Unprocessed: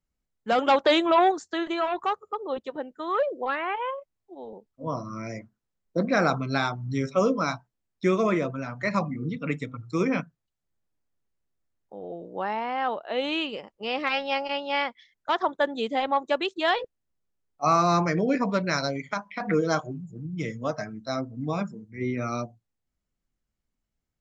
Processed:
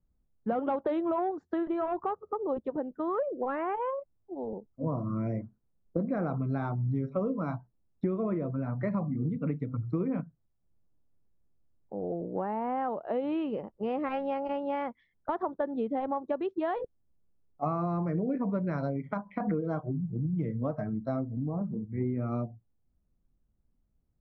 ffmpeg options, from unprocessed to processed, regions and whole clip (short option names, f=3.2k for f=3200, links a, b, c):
-filter_complex "[0:a]asettb=1/sr,asplit=3[a][b][c];[a]atrim=end=21.294[d];[b]atrim=start=21.29:end=21.77,asetpts=PTS-STARTPTS,afade=t=in:d=0.004:c=qsin,afade=t=out:st=0.476:d=0.004:c=qsin,lowpass=f=1.1k:w=0.5412,lowpass=f=1.1k:w=1.3066,acompressor=threshold=-36dB:ratio=3:attack=3.2:release=140:knee=1:detection=peak[e];[c]atrim=start=21.766[f];[d][e]acrossfade=d=0.004:c1=hsin:c2=qsin[g];[g][f]acrossfade=d=0.004:c1=qsin:c2=hsin,lowpass=1.1k,lowshelf=f=360:g=10.5,acompressor=threshold=-28dB:ratio=6"